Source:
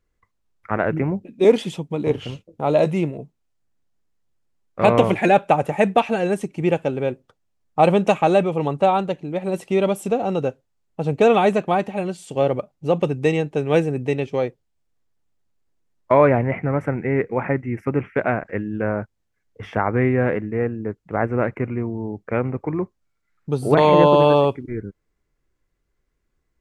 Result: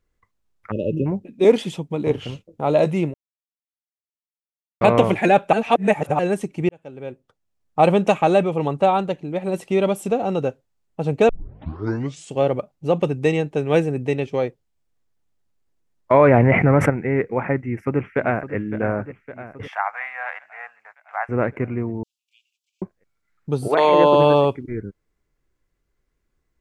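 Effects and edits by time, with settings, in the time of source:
0:00.71–0:01.06: time-frequency box erased 620–2,500 Hz
0:03.14–0:04.81: silence
0:05.53–0:06.19: reverse
0:06.69–0:07.81: fade in
0:11.29: tape start 1.05 s
0:16.14–0:16.90: envelope flattener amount 70%
0:17.62–0:18.55: delay throw 560 ms, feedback 65%, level −12 dB
0:19.68–0:21.29: elliptic high-pass filter 740 Hz, stop band 50 dB
0:22.03–0:22.82: Butterworth high-pass 2,900 Hz 96 dB per octave
0:23.67–0:24.14: high-pass filter 540 Hz → 200 Hz

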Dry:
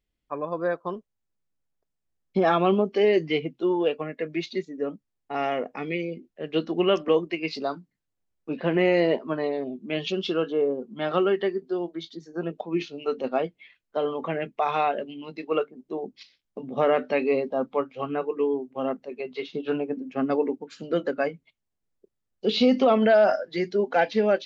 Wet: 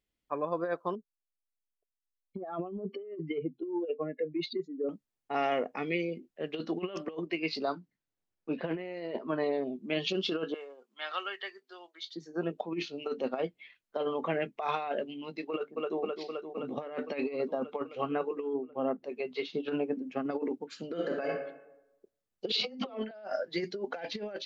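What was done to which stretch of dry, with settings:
0:00.95–0:04.89: expanding power law on the bin magnitudes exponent 1.9
0:07.17–0:09.64: high-frequency loss of the air 63 metres
0:10.54–0:12.16: high-pass filter 1,400 Hz
0:15.50–0:16.01: delay throw 260 ms, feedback 80%, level −8 dB
0:18.53–0:19.04: low-pass filter 1,100 Hz 6 dB per octave
0:20.88–0:21.29: thrown reverb, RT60 0.88 s, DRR 5 dB
0:22.52–0:23.11: all-pass dispersion lows, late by 106 ms, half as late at 320 Hz
whole clip: dynamic equaliser 4,400 Hz, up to +4 dB, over −54 dBFS, Q 5.3; compressor whose output falls as the input rises −26 dBFS, ratio −0.5; low-shelf EQ 120 Hz −8 dB; level −5 dB

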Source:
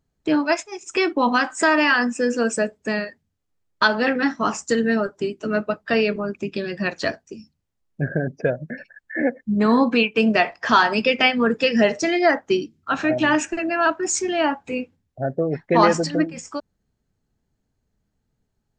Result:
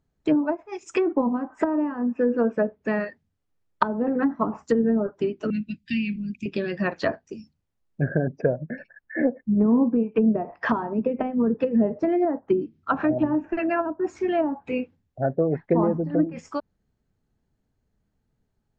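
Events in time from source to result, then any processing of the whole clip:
0:02.02–0:03.00: high-frequency loss of the air 150 metres
0:05.50–0:06.46: elliptic band-stop filter 250–2,400 Hz
0:08.44–0:10.53: high-shelf EQ 2,800 Hz −11 dB
whole clip: dynamic equaliser 1,000 Hz, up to +6 dB, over −35 dBFS, Q 2.3; treble cut that deepens with the level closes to 360 Hz, closed at −14.5 dBFS; high-shelf EQ 4,400 Hz −8 dB

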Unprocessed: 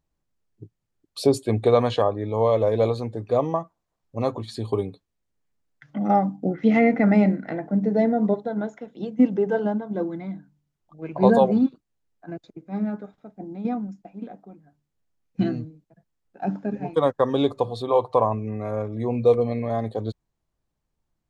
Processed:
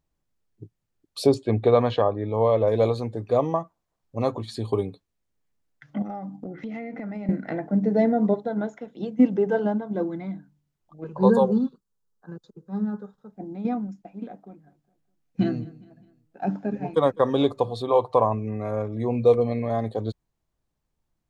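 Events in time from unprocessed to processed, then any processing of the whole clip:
0:01.34–0:02.68: high-frequency loss of the air 140 metres
0:06.02–0:07.29: downward compressor 8 to 1, threshold −31 dBFS
0:11.04–0:13.33: phaser with its sweep stopped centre 450 Hz, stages 8
0:14.26–0:17.46: repeating echo 205 ms, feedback 48%, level −22 dB

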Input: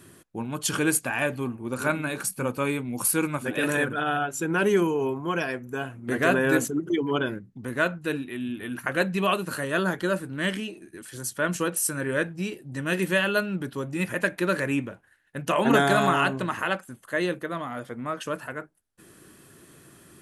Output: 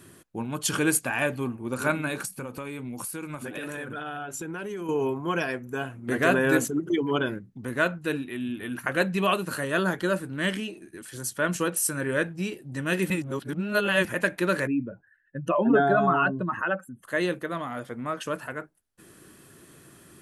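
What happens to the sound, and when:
0:02.25–0:04.89: downward compressor 10 to 1, threshold −31 dBFS
0:13.10–0:14.05: reverse
0:14.67–0:17.04: expanding power law on the bin magnitudes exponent 2

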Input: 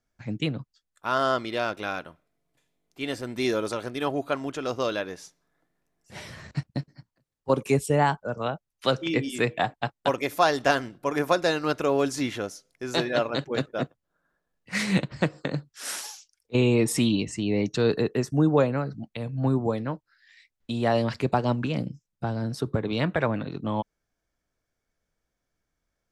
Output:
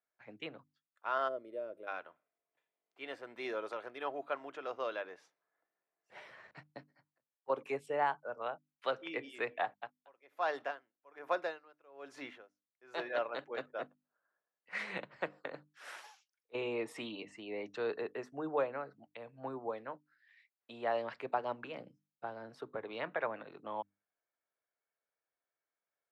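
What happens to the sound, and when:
0:01.28–0:01.88: gain on a spectral selection 650–8,100 Hz −21 dB
0:09.71–0:12.99: tremolo with a sine in dB 1.2 Hz, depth 29 dB
whole clip: high-pass filter 110 Hz; three-way crossover with the lows and the highs turned down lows −21 dB, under 420 Hz, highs −20 dB, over 2,900 Hz; mains-hum notches 50/100/150/200/250/300 Hz; level −8 dB

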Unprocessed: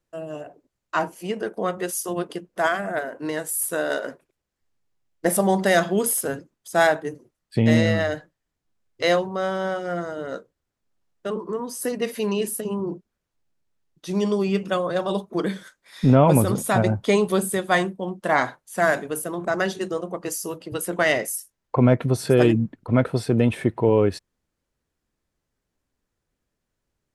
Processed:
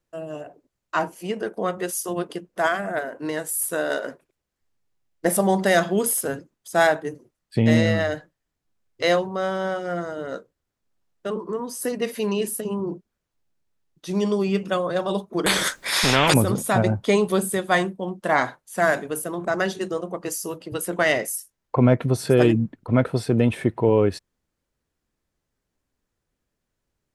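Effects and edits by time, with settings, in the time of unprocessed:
0:15.46–0:16.34: every bin compressed towards the loudest bin 4 to 1

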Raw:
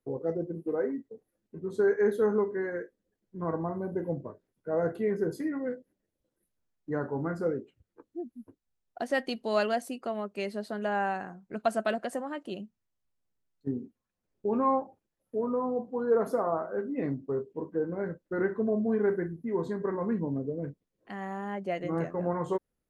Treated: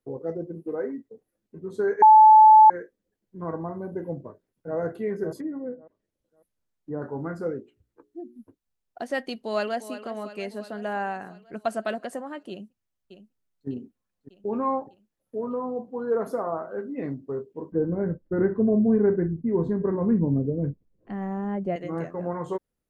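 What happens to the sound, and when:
0:02.02–0:02.70: beep over 867 Hz −8.5 dBFS
0:04.10–0:04.77: delay throw 550 ms, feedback 25%, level −10 dB
0:05.39–0:07.02: treble cut that deepens with the level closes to 780 Hz, closed at −31.5 dBFS
0:07.60–0:08.39: mains-hum notches 60/120/180/240/300/360/420 Hz
0:09.32–0:09.92: delay throw 350 ms, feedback 65%, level −12.5 dB
0:12.50–0:13.68: delay throw 600 ms, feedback 60%, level −10.5 dB
0:17.72–0:21.76: spectral tilt −4 dB per octave

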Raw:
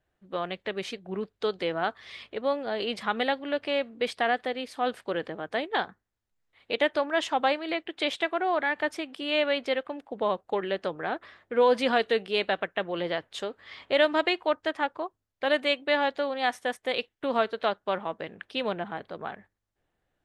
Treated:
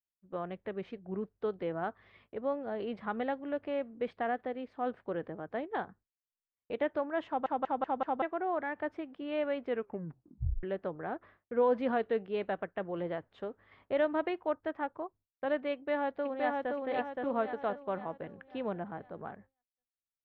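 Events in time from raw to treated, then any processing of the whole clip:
0:07.27: stutter in place 0.19 s, 5 plays
0:09.65: tape stop 0.98 s
0:15.73–0:16.77: delay throw 520 ms, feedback 45%, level −2 dB
whole clip: low-pass filter 1,500 Hz 12 dB per octave; downward expander −48 dBFS; low-shelf EQ 250 Hz +8.5 dB; level −7.5 dB

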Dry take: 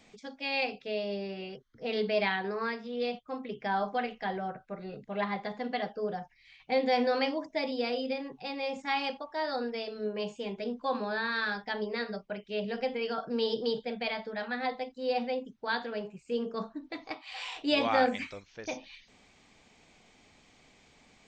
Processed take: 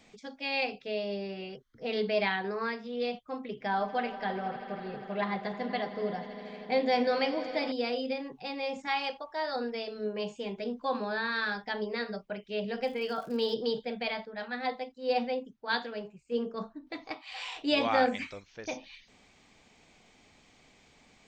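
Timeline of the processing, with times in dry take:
0:03.44–0:07.72: echo that builds up and dies away 80 ms, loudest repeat 5, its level −18 dB
0:08.87–0:09.56: parametric band 230 Hz −10.5 dB 0.66 octaves
0:12.82–0:13.53: surface crackle 240 per second −44 dBFS
0:14.25–0:16.87: multiband upward and downward expander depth 70%

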